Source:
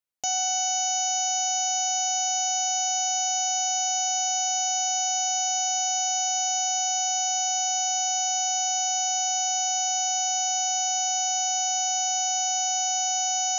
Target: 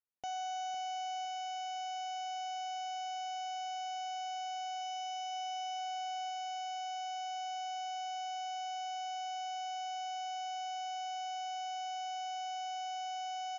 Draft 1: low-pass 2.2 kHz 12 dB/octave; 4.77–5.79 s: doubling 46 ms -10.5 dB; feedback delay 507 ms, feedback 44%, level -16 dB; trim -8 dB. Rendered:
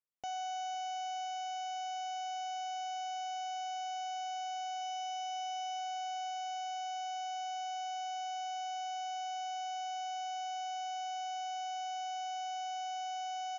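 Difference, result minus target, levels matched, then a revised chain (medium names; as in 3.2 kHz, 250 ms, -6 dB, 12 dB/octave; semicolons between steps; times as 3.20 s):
echo-to-direct -6 dB
low-pass 2.2 kHz 12 dB/octave; 4.77–5.79 s: doubling 46 ms -10.5 dB; feedback delay 507 ms, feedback 44%, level -10 dB; trim -8 dB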